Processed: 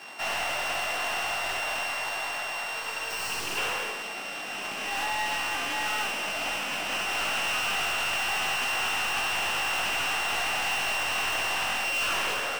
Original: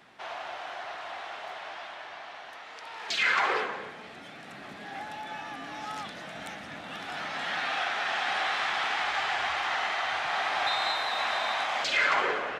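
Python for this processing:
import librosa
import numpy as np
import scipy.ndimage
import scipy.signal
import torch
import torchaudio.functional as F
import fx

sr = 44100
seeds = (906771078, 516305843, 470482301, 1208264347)

p1 = np.r_[np.sort(x[:len(x) // 16 * 16].reshape(-1, 16), axis=1).ravel(), x[len(x) // 16 * 16:]]
p2 = fx.weighting(p1, sr, curve='A')
p3 = fx.rider(p2, sr, range_db=4, speed_s=0.5)
p4 = 10.0 ** (-36.0 / 20.0) * np.tanh(p3 / 10.0 ** (-36.0 / 20.0))
p5 = fx.spec_repair(p4, sr, seeds[0], start_s=2.84, length_s=0.71, low_hz=420.0, high_hz=4000.0, source='before')
p6 = p5 + fx.room_early_taps(p5, sr, ms=(20, 68), db=(-3.0, -5.0), dry=0)
p7 = fx.doppler_dist(p6, sr, depth_ms=0.16)
y = p7 * 10.0 ** (7.5 / 20.0)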